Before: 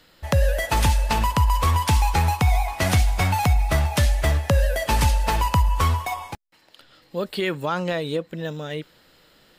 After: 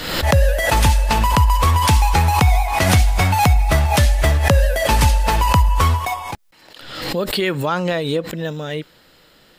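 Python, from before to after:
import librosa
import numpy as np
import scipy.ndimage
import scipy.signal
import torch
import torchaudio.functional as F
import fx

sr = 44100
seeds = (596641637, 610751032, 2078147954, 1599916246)

y = fx.pre_swell(x, sr, db_per_s=53.0)
y = y * librosa.db_to_amplitude(4.5)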